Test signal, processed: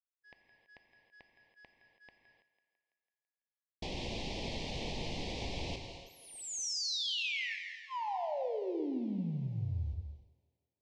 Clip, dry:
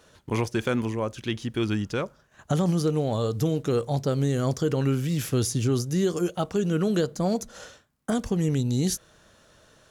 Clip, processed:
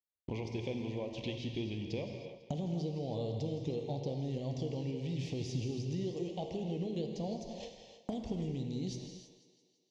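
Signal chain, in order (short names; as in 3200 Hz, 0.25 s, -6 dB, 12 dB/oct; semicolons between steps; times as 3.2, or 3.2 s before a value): G.711 law mismatch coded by mu; Chebyshev band-stop 800–2400 Hz, order 2; gate -40 dBFS, range -58 dB; LPF 5100 Hz 24 dB/oct; compressor 6:1, threshold -37 dBFS; on a send: thinning echo 0.166 s, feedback 60%, high-pass 160 Hz, level -14 dB; on the sum: non-linear reverb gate 0.34 s flat, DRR 4 dB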